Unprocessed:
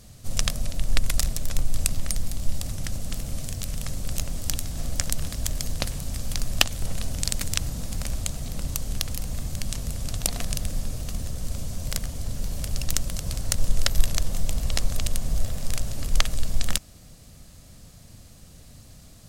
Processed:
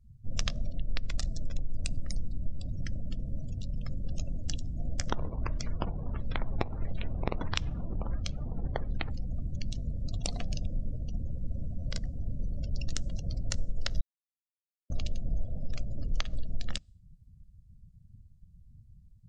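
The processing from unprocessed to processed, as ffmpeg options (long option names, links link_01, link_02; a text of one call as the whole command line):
ffmpeg -i in.wav -filter_complex "[0:a]asettb=1/sr,asplit=3[link_01][link_02][link_03];[link_01]atrim=end=5.104[link_04];[link_02]atrim=start=5.1:end=9.11,asetpts=PTS-STARTPTS,afade=type=in:duration=0.004:curve=qsin,afade=type=out:start_time=4.006:duration=0.004:curve=qsin,acrusher=samples=16:mix=1:aa=0.000001:lfo=1:lforange=25.6:lforate=1.5[link_05];[link_03]atrim=start=9.106[link_06];[link_04][link_05]acrossfade=duration=0.004:curve1=hsin:curve2=qsin[link_07];[link_07][link_06]acrossfade=duration=0.004:curve1=qsin:curve2=hsin,asplit=3[link_08][link_09][link_10];[link_08]atrim=end=14.01,asetpts=PTS-STARTPTS,afade=type=out:start_time=14.006:duration=0.004:curve=hsin[link_11];[link_09]atrim=start=14.01:end=14.9,asetpts=PTS-STARTPTS,volume=0[link_12];[link_10]atrim=start=14.9,asetpts=PTS-STARTPTS,afade=type=in:duration=0.004:curve=hsin[link_13];[link_11][link_12][link_13]concat=n=3:v=0:a=1,acrossover=split=7000[link_14][link_15];[link_15]acompressor=threshold=-49dB:ratio=4:attack=1:release=60[link_16];[link_14][link_16]amix=inputs=2:normalize=0,afftdn=noise_reduction=35:noise_floor=-36,acompressor=threshold=-20dB:ratio=5,volume=-3.5dB" out.wav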